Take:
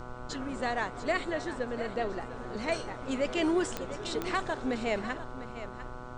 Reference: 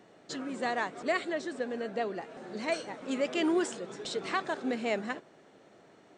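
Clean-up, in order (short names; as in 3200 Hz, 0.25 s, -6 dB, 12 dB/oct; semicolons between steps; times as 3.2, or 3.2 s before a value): de-click; de-hum 124 Hz, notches 12; noise print and reduce 17 dB; inverse comb 0.699 s -12.5 dB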